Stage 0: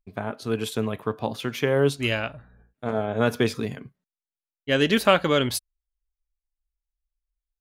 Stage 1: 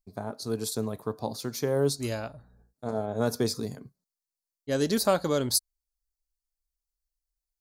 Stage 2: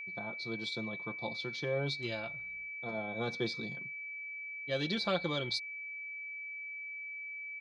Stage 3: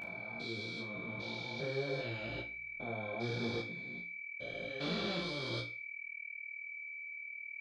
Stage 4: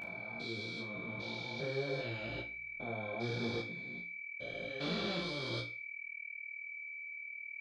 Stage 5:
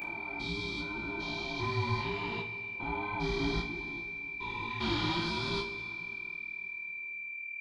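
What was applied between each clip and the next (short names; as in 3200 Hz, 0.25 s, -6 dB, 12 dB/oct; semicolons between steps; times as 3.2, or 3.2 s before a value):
EQ curve 870 Hz 0 dB, 3000 Hz -15 dB, 4300 Hz +9 dB; gain -4.5 dB
ladder low-pass 4000 Hz, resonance 65%; comb 5.8 ms, depth 70%; whine 2300 Hz -42 dBFS; gain +1.5 dB
stepped spectrum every 0.4 s; resonator 58 Hz, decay 0.33 s, harmonics all, mix 90%; detuned doubles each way 29 cents; gain +12 dB
nothing audible
band inversion scrambler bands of 500 Hz; plate-style reverb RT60 3.4 s, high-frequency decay 0.85×, pre-delay 0 ms, DRR 10.5 dB; gain +5 dB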